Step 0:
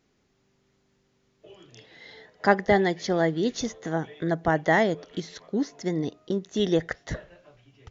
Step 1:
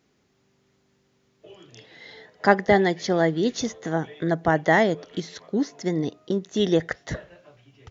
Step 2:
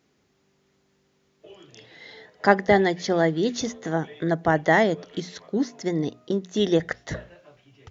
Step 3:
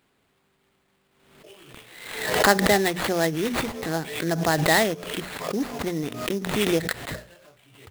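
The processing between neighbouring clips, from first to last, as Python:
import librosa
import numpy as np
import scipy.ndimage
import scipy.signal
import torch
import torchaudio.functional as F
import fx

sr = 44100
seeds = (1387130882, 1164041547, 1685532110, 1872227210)

y1 = scipy.signal.sosfilt(scipy.signal.butter(2, 66.0, 'highpass', fs=sr, output='sos'), x)
y1 = F.gain(torch.from_numpy(y1), 2.5).numpy()
y2 = fx.hum_notches(y1, sr, base_hz=60, count=4)
y3 = fx.high_shelf(y2, sr, hz=2000.0, db=10.0)
y3 = fx.sample_hold(y3, sr, seeds[0], rate_hz=5900.0, jitter_pct=20)
y3 = fx.pre_swell(y3, sr, db_per_s=57.0)
y3 = F.gain(torch.from_numpy(y3), -3.5).numpy()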